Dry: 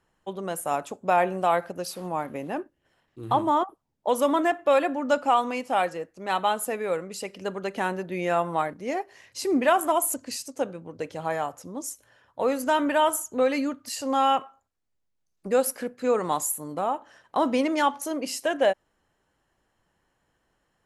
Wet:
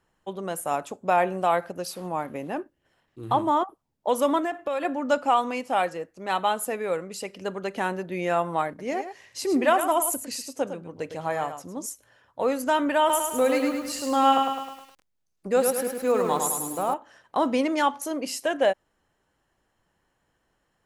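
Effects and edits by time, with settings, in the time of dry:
4.38–4.85 compressor, threshold -24 dBFS
8.68–11.86 echo 0.107 s -9.5 dB
12.99–16.94 lo-fi delay 0.104 s, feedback 55%, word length 8-bit, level -4 dB

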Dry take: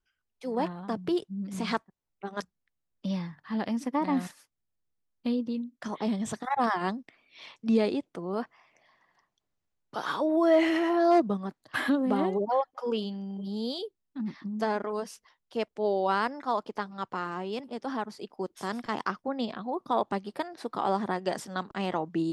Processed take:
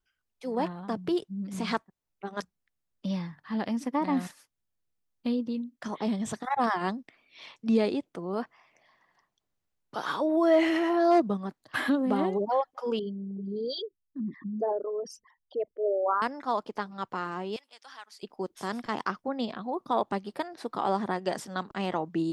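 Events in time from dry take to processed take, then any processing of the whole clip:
12.99–16.22 formant sharpening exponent 3
17.56–18.23 Bessel high-pass 2400 Hz

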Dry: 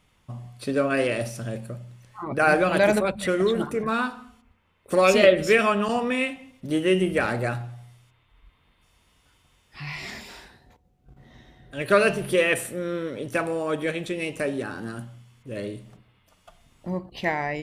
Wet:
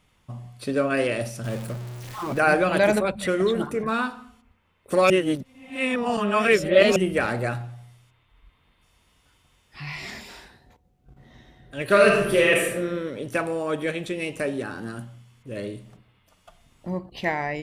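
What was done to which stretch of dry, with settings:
1.44–2.4 zero-crossing step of -33 dBFS
5.1–6.96 reverse
11.85–12.81 reverb throw, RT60 0.88 s, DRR -0.5 dB

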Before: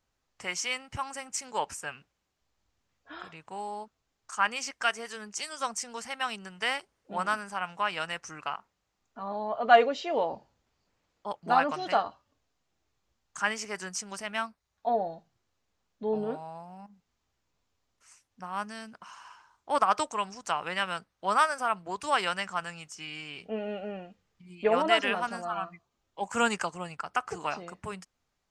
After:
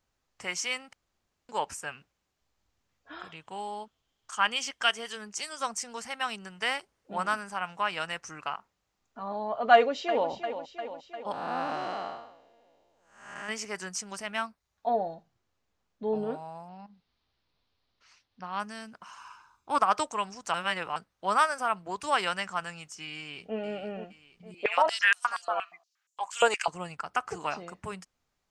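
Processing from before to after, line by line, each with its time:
0.93–1.49 room tone
3.29–5.15 bell 3200 Hz +12.5 dB 0.26 oct
9.73–10.3 echo throw 0.35 s, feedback 65%, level -10.5 dB
11.32–13.49 time blur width 0.337 s
15.14–16.04 high shelf 4300 Hz -5 dB
16.68–18.6 resonant high shelf 6000 Hz -13.5 dB, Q 3
19.18–19.79 comb 0.8 ms, depth 51%
20.54–20.96 reverse
23.16–23.57 echo throw 0.47 s, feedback 45%, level -9.5 dB
24.54–26.68 stepped high-pass 8.5 Hz 520–7300 Hz

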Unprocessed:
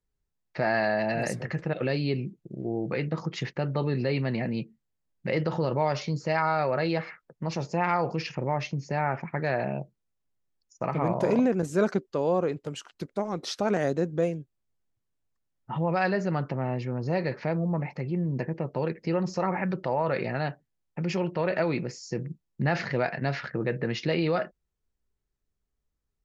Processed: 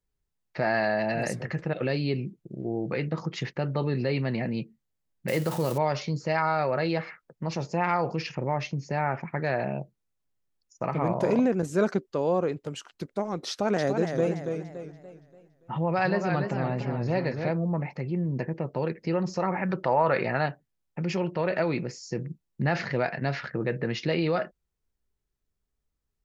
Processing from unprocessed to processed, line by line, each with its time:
5.28–5.78 switching spikes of -27.5 dBFS
13.5–17.51 warbling echo 0.286 s, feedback 41%, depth 115 cents, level -6 dB
19.69–20.46 bell 1200 Hz +6.5 dB 2.2 oct

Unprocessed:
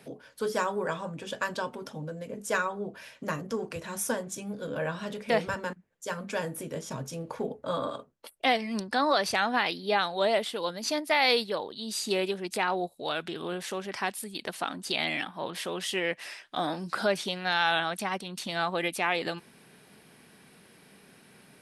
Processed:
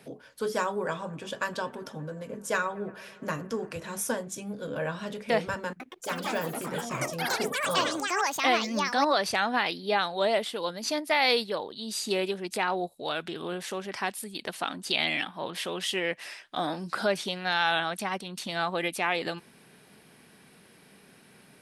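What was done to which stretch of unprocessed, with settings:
0.77–4.01 analogue delay 0.115 s, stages 2048, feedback 83%, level -23 dB
5.68–10.27 echoes that change speed 0.119 s, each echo +6 st, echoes 3
14.46–15.92 dynamic EQ 3000 Hz, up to +4 dB, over -43 dBFS, Q 1.3

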